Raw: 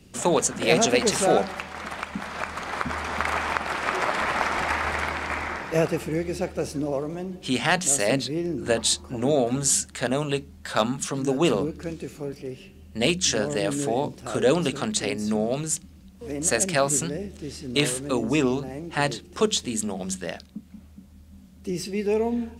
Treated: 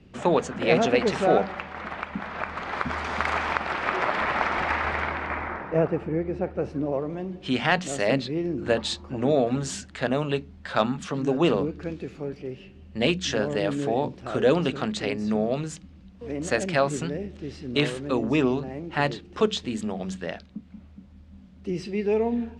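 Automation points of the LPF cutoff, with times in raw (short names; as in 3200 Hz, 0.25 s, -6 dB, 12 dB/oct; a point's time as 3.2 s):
2.45 s 2700 Hz
3.12 s 5900 Hz
3.88 s 3500 Hz
4.86 s 3500 Hz
5.72 s 1400 Hz
6.4 s 1400 Hz
7.35 s 3400 Hz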